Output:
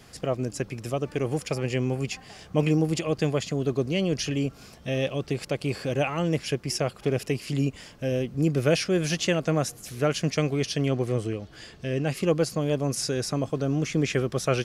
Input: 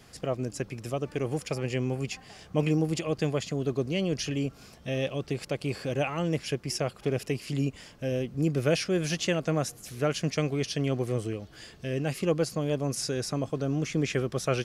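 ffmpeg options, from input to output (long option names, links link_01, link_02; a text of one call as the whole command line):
ffmpeg -i in.wav -filter_complex "[0:a]asettb=1/sr,asplit=3[link_01][link_02][link_03];[link_01]atrim=end=10.904[link_04];[link_02]atrim=start=10.9:end=12.17,asetpts=PTS-STARTPTS,afade=type=in:duration=0.004:curve=qsin,afade=type=out:start_time=1.266:duration=0.004:curve=qsin,highshelf=frequency=11000:gain=-10[link_05];[link_03]atrim=start=12.166[link_06];[link_04][link_05]acrossfade=duration=0.004:curve1=hsin:curve2=qsin[link_07];[link_07][link_06]acrossfade=duration=0.004:curve1=qsin:curve2=hsin,volume=3dB" out.wav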